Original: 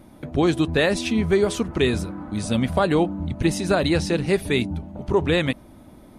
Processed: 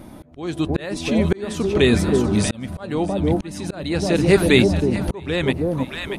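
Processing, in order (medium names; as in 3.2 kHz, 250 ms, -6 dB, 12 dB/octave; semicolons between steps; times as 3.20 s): echo whose repeats swap between lows and highs 319 ms, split 820 Hz, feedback 51%, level -6 dB; slow attack 739 ms; trim +7.5 dB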